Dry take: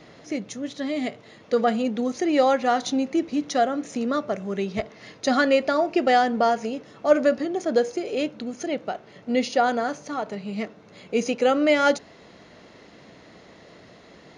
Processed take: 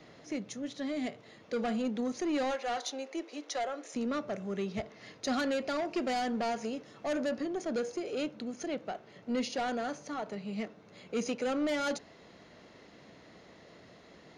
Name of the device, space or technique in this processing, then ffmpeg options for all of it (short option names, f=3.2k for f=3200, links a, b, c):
one-band saturation: -filter_complex "[0:a]asplit=3[a][b][c];[a]afade=t=out:st=2.5:d=0.02[d];[b]highpass=f=400:w=0.5412,highpass=f=400:w=1.3066,afade=t=in:st=2.5:d=0.02,afade=t=out:st=3.93:d=0.02[e];[c]afade=t=in:st=3.93:d=0.02[f];[d][e][f]amix=inputs=3:normalize=0,asettb=1/sr,asplit=3[g][h][i];[g]atrim=end=5.684[j];[h]atrim=start=5.68:end=7.16,asetpts=PTS-STARTPTS,afade=t=in:d=0.004:c=qsin,afade=t=out:st=1.476:d=0.004:c=qsin,highshelf=f=3.2k:g=3.5[k];[i]atrim=start=7.156[l];[j][k]acrossfade=d=0.004:c1=hsin:c2=qsin[m];[m][l]acrossfade=d=0.004:c1=qsin:c2=hsin,acrossover=split=250|4500[n][o][p];[o]asoftclip=type=tanh:threshold=-24dB[q];[n][q][p]amix=inputs=3:normalize=0,volume=-6.5dB"